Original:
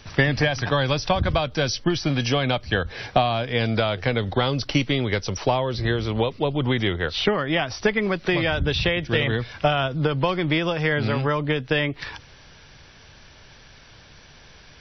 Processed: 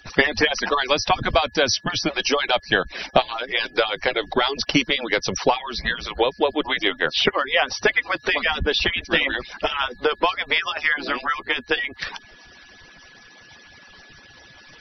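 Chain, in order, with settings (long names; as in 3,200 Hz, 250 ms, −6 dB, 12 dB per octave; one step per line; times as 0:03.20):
harmonic-percussive split with one part muted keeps percussive
steady tone 1,700 Hz −55 dBFS
low-shelf EQ 320 Hz −5 dB
level +6 dB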